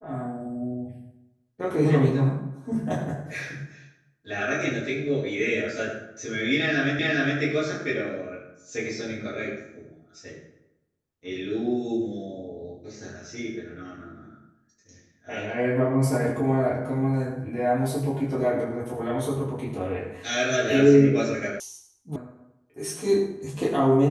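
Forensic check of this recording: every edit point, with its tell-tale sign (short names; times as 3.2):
6.99 repeat of the last 0.41 s
21.6 sound cut off
22.16 sound cut off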